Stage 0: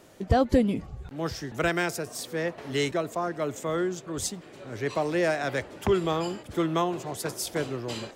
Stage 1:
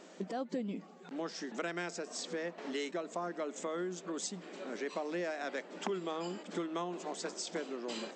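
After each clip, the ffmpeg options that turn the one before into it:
-af "acompressor=threshold=-36dB:ratio=4,afftfilt=real='re*between(b*sr/4096,170,8200)':imag='im*between(b*sr/4096,170,8200)':win_size=4096:overlap=0.75"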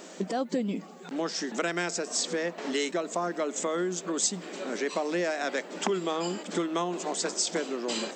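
-af "highshelf=f=7.3k:g=12,volume=8dB"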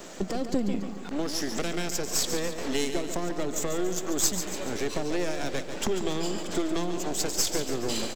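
-filter_complex "[0:a]aeval=exprs='if(lt(val(0),0),0.251*val(0),val(0))':c=same,acrossover=split=480|3000[a][b][c];[b]acompressor=threshold=-43dB:ratio=6[d];[a][d][c]amix=inputs=3:normalize=0,aecho=1:1:142|284|426|568|710|852:0.355|0.181|0.0923|0.0471|0.024|0.0122,volume=5.5dB"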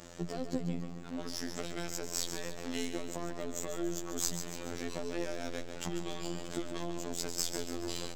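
-af "afreqshift=-21,aeval=exprs='val(0)+0.00447*(sin(2*PI*60*n/s)+sin(2*PI*2*60*n/s)/2+sin(2*PI*3*60*n/s)/3+sin(2*PI*4*60*n/s)/4+sin(2*PI*5*60*n/s)/5)':c=same,afftfilt=real='hypot(re,im)*cos(PI*b)':imag='0':win_size=2048:overlap=0.75,volume=-5dB"

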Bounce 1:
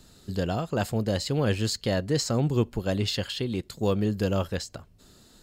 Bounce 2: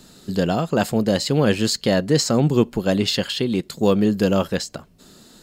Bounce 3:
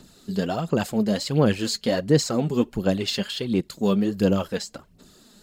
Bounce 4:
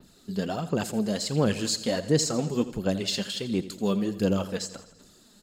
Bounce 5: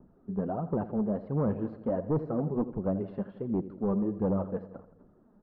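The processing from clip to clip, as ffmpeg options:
-af "lowshelf=f=130:t=q:w=1.5:g=-7.5,volume=7.5dB"
-af "aphaser=in_gain=1:out_gain=1:delay=5:decay=0.53:speed=1.4:type=sinusoidal,volume=-6.5dB"
-af "adynamicequalizer=threshold=0.00562:dfrequency=7500:dqfactor=0.88:tfrequency=7500:tqfactor=0.88:attack=5:release=100:ratio=0.375:range=3.5:mode=boostabove:tftype=bell,aecho=1:1:84|168|252|336|420|504:0.178|0.107|0.064|0.0384|0.023|0.0138,volume=-4.5dB"
-af "asoftclip=type=hard:threshold=-21.5dB,lowpass=f=1.1k:w=0.5412,lowpass=f=1.1k:w=1.3066,volume=-1.5dB"

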